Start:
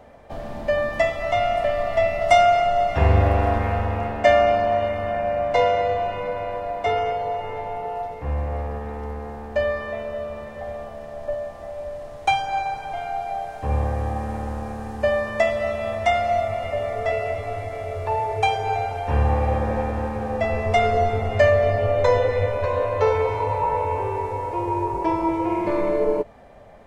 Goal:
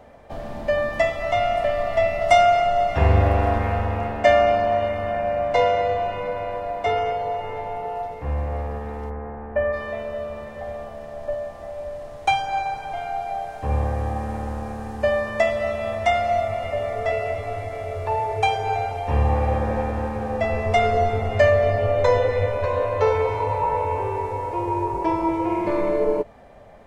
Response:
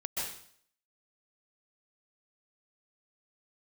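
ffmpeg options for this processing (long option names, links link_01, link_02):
-filter_complex "[0:a]asplit=3[link_01][link_02][link_03];[link_01]afade=type=out:start_time=9.09:duration=0.02[link_04];[link_02]lowpass=frequency=2100:width=0.5412,lowpass=frequency=2100:width=1.3066,afade=type=in:start_time=9.09:duration=0.02,afade=type=out:start_time=9.72:duration=0.02[link_05];[link_03]afade=type=in:start_time=9.72:duration=0.02[link_06];[link_04][link_05][link_06]amix=inputs=3:normalize=0,asettb=1/sr,asplit=3[link_07][link_08][link_09];[link_07]atrim=end=18.914[link_10];[link_08]atrim=start=18.91:end=19.35,asetpts=PTS-STARTPTS,afade=type=in:duration=0.004:curve=qsin,afade=type=out:start_time=0.436:duration=0.004:curve=qsin,bandreject=frequency=1500:width=6.4[link_11];[link_09]atrim=start=19.346[link_12];[link_10][link_11]acrossfade=duration=0.004:curve1=hsin:curve2=qsin[link_13];[link_13][link_12]acrossfade=duration=0.004:curve1=qsin:curve2=hsin"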